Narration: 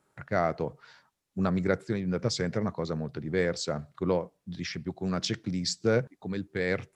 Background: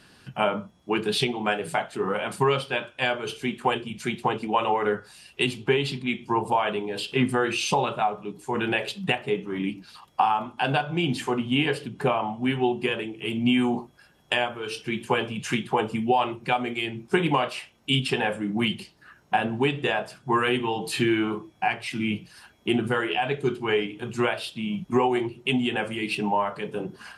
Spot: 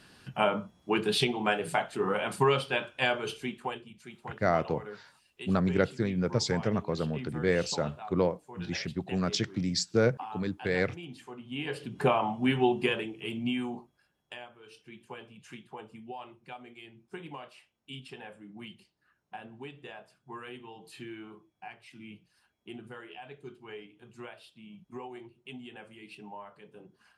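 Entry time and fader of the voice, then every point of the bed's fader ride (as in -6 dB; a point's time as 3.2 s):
4.10 s, +0.5 dB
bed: 3.23 s -2.5 dB
4.06 s -19 dB
11.39 s -19 dB
11.98 s -1.5 dB
12.84 s -1.5 dB
14.4 s -20.5 dB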